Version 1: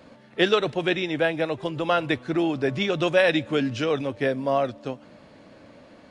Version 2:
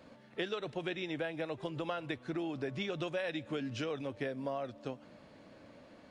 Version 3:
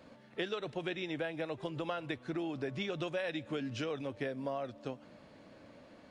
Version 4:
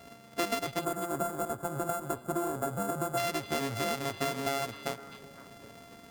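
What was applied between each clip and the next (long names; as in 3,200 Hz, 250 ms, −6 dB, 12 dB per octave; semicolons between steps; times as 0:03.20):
downward compressor, threshold −27 dBFS, peak gain reduction 11.5 dB; level −7 dB
no processing that can be heard
samples sorted by size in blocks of 64 samples; gain on a spectral selection 0:00.80–0:03.17, 1,700–6,700 Hz −17 dB; echo through a band-pass that steps 256 ms, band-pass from 3,300 Hz, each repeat −1.4 octaves, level −9.5 dB; level +5.5 dB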